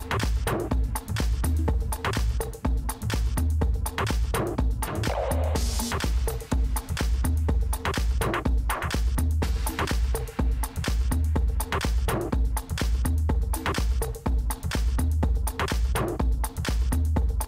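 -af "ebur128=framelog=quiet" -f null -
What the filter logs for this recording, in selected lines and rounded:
Integrated loudness:
  I:         -27.4 LUFS
  Threshold: -37.3 LUFS
Loudness range:
  LRA:         0.8 LU
  Threshold: -47.4 LUFS
  LRA low:   -27.8 LUFS
  LRA high:  -27.0 LUFS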